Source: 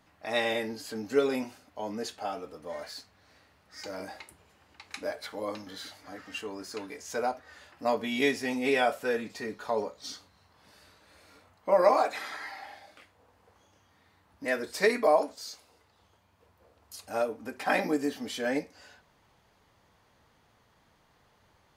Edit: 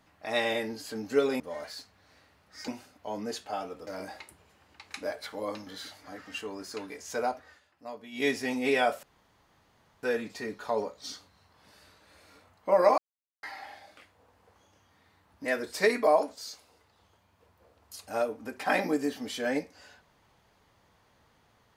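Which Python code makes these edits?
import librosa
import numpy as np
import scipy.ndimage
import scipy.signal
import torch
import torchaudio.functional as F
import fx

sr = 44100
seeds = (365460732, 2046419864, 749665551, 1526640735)

y = fx.edit(x, sr, fx.move(start_s=1.4, length_s=1.19, to_s=3.87),
    fx.fade_down_up(start_s=7.43, length_s=0.87, db=-14.0, fade_s=0.18),
    fx.insert_room_tone(at_s=9.03, length_s=1.0),
    fx.silence(start_s=11.98, length_s=0.45), tone=tone)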